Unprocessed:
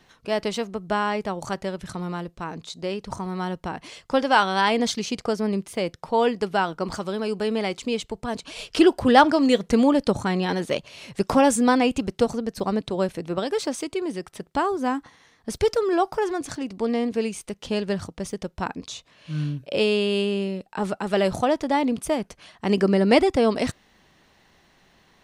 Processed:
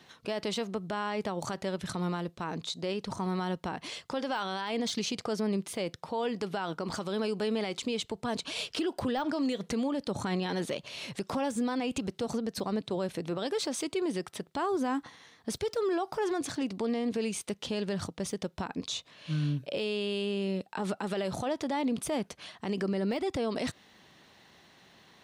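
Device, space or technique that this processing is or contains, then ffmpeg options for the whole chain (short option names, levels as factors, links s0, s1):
broadcast voice chain: -af "highpass=95,deesser=0.55,acompressor=threshold=0.0891:ratio=4,equalizer=f=3700:t=o:w=0.52:g=4,alimiter=limit=0.0668:level=0:latency=1:release=83"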